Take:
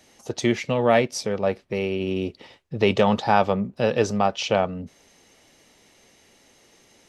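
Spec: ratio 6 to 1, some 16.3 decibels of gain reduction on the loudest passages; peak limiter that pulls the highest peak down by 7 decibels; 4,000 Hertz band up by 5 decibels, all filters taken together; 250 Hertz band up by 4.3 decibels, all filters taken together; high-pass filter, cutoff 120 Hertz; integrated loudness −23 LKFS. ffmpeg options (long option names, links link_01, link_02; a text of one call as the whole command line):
ffmpeg -i in.wav -af "highpass=120,equalizer=frequency=250:width_type=o:gain=6,equalizer=frequency=4000:width_type=o:gain=7,acompressor=threshold=-30dB:ratio=6,volume=12.5dB,alimiter=limit=-11.5dB:level=0:latency=1" out.wav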